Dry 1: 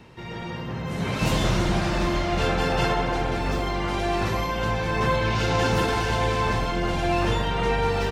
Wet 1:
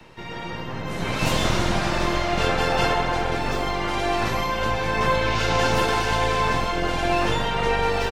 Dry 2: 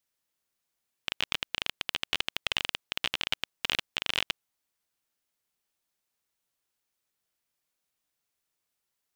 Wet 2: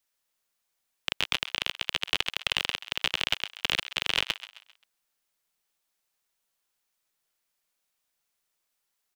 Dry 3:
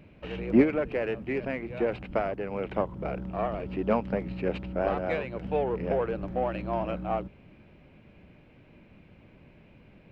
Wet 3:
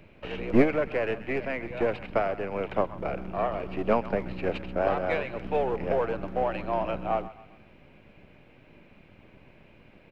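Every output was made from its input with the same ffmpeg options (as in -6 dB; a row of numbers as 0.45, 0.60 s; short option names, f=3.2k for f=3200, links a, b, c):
-filter_complex "[0:a]acrossover=split=450|530[a][b][c];[a]aeval=exprs='max(val(0),0)':c=same[d];[c]aecho=1:1:132|264|396|528:0.2|0.0798|0.0319|0.0128[e];[d][b][e]amix=inputs=3:normalize=0,volume=3dB"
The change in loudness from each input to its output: +1.5, +3.0, +1.0 LU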